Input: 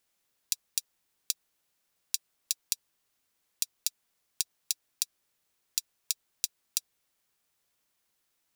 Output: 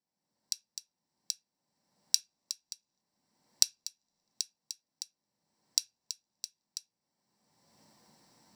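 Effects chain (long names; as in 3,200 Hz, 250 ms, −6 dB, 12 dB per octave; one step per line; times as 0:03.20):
camcorder AGC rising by 29 dB per second
high-shelf EQ 3,000 Hz −7.5 dB
convolution reverb RT60 0.20 s, pre-delay 3 ms, DRR 6.5 dB
level −16 dB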